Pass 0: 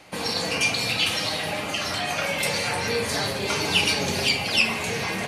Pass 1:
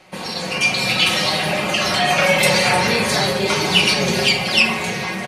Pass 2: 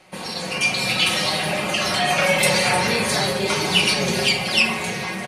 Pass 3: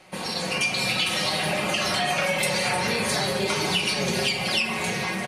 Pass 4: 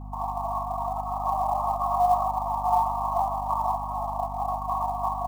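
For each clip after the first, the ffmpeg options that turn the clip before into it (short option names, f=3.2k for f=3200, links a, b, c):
-af "highshelf=f=5.9k:g=-5,aecho=1:1:5.4:0.6,dynaudnorm=f=300:g=5:m=11dB"
-af "equalizer=f=9.6k:w=2.1:g=5,volume=-3dB"
-af "acompressor=threshold=-21dB:ratio=6"
-af "asuperpass=centerf=880:order=20:qfactor=1.6,acrusher=bits=7:mode=log:mix=0:aa=0.000001,aeval=exprs='val(0)+0.00631*(sin(2*PI*50*n/s)+sin(2*PI*2*50*n/s)/2+sin(2*PI*3*50*n/s)/3+sin(2*PI*4*50*n/s)/4+sin(2*PI*5*50*n/s)/5)':c=same,volume=7.5dB"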